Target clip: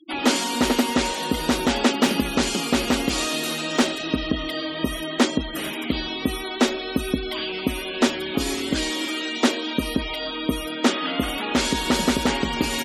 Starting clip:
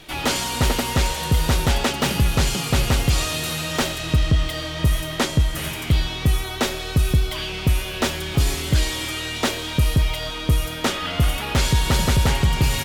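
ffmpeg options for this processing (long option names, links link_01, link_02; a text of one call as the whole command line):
ffmpeg -i in.wav -af "lowshelf=frequency=170:width_type=q:width=3:gain=-13.5,afftfilt=real='re*gte(hypot(re,im),0.0282)':imag='im*gte(hypot(re,im),0.0282)':win_size=1024:overlap=0.75" out.wav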